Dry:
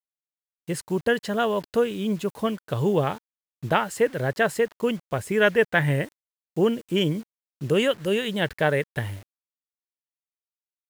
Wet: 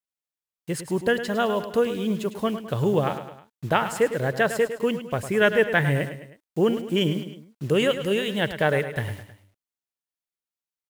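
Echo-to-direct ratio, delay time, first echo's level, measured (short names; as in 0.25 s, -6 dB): -10.0 dB, 0.105 s, -11.0 dB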